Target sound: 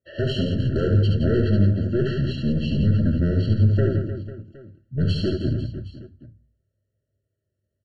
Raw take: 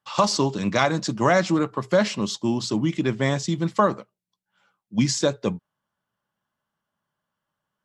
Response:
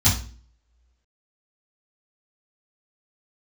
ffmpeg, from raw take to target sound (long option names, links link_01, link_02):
-filter_complex "[0:a]highpass=frequency=72:width=0.5412,highpass=frequency=72:width=1.3066,tiltshelf=frequency=830:gain=5.5,aeval=exprs='(tanh(7.94*val(0)+0.25)-tanh(0.25))/7.94':channel_layout=same,asetrate=28595,aresample=44100,atempo=1.54221,aecho=1:1:70|168|305.2|497.3|766.2:0.631|0.398|0.251|0.158|0.1,asplit=2[link_01][link_02];[1:a]atrim=start_sample=2205,lowshelf=frequency=170:gain=-10.5[link_03];[link_02][link_03]afir=irnorm=-1:irlink=0,volume=-26dB[link_04];[link_01][link_04]amix=inputs=2:normalize=0,afftfilt=real='re*eq(mod(floor(b*sr/1024/660),2),0)':imag='im*eq(mod(floor(b*sr/1024/660),2),0)':win_size=1024:overlap=0.75"